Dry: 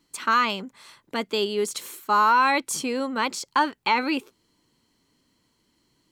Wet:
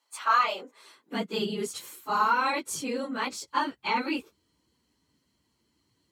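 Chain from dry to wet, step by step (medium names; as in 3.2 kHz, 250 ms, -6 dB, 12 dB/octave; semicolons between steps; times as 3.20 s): phase randomisation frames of 50 ms; high-pass sweep 790 Hz -> 65 Hz, 0.30–2.00 s; trim -5.5 dB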